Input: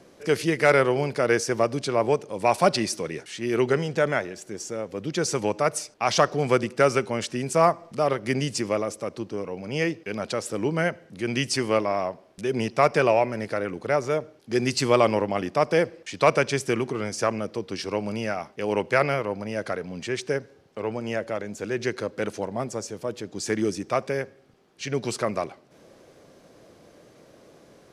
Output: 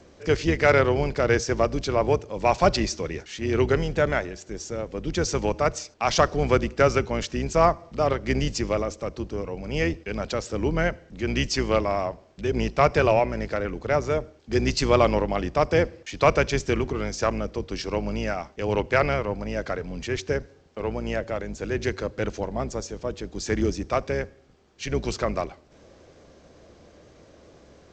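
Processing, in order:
sub-octave generator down 2 octaves, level −1 dB
G.722 64 kbit/s 16,000 Hz

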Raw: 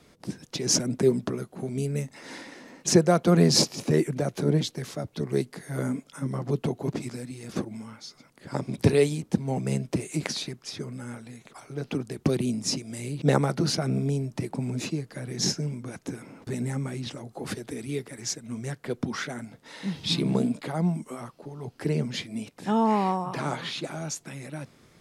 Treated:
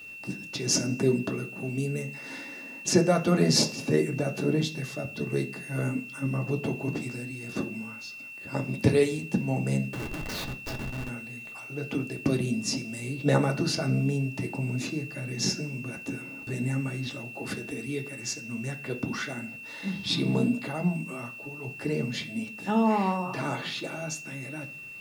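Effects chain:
0:09.88–0:11.09: comparator with hysteresis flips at −33 dBFS
bit-depth reduction 10 bits, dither triangular
steady tone 2,700 Hz −41 dBFS
on a send: convolution reverb RT60 0.45 s, pre-delay 3 ms, DRR 3 dB
on the sum: level −3 dB

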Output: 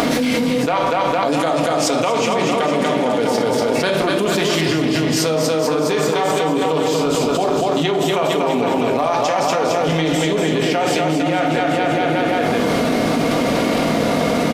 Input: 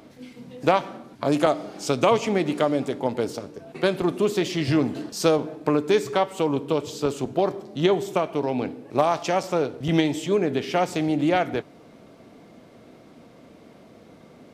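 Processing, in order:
low-shelf EQ 440 Hz −8 dB
on a send: bouncing-ball delay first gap 240 ms, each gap 0.9×, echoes 5
on the sum: rectangular room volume 710 cubic metres, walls furnished, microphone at 1.8 metres
envelope flattener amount 100%
level −3 dB

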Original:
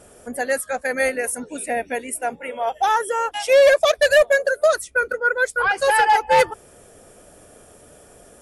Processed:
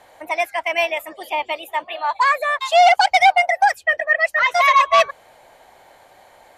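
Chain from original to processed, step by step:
three-way crossover with the lows and the highs turned down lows −14 dB, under 420 Hz, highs −22 dB, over 5,300 Hz
speed change +28%
level +3 dB

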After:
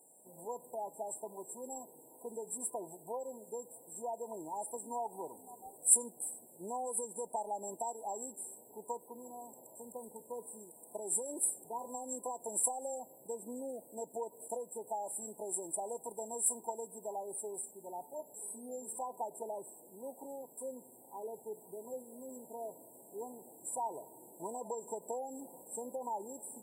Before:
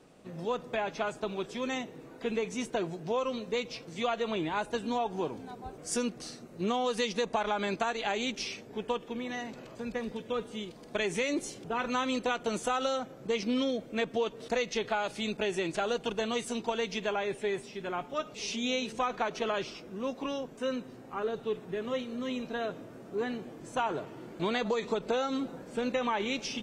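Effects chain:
brick-wall band-stop 1,000–7,400 Hz
first difference
tape wow and flutter 23 cents
level +13 dB

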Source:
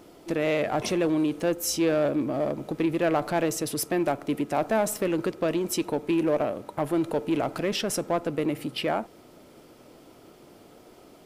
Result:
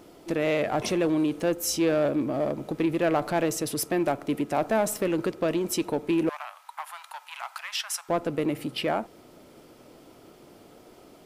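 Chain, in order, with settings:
0:06.29–0:08.09: Butterworth high-pass 860 Hz 48 dB per octave

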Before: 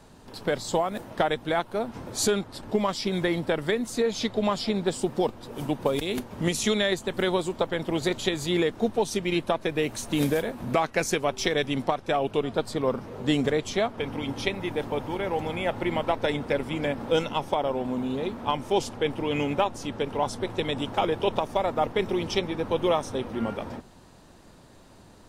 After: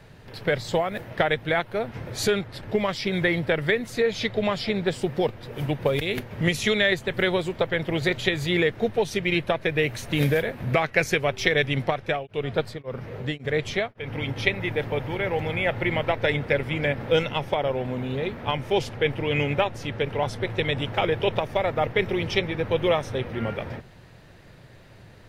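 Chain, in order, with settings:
graphic EQ with 10 bands 125 Hz +9 dB, 250 Hz −7 dB, 500 Hz +3 dB, 1,000 Hz −6 dB, 2,000 Hz +9 dB, 8,000 Hz −9 dB
0:12.00–0:14.36: tremolo along a rectified sine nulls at 1.8 Hz
level +1.5 dB

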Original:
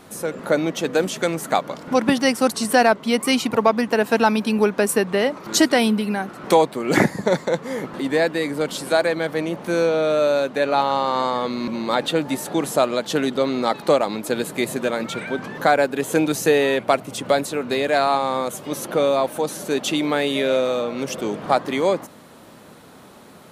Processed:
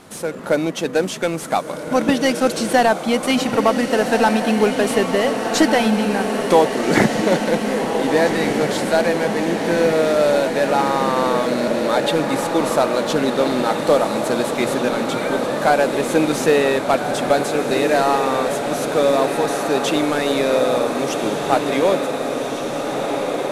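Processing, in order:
variable-slope delta modulation 64 kbit/s
on a send: feedback delay with all-pass diffusion 1,559 ms, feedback 75%, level −6 dB
on the sum: level +1.5 dB

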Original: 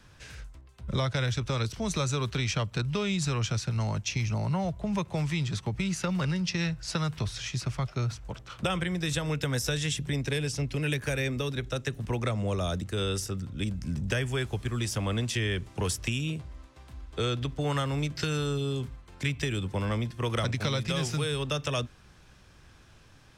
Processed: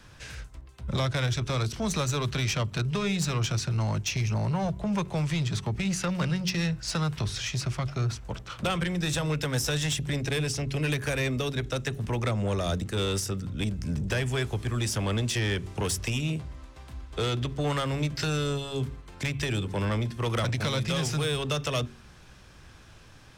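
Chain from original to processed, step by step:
soft clipping −26 dBFS, distortion −14 dB
hum removal 46.38 Hz, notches 9
level +4.5 dB

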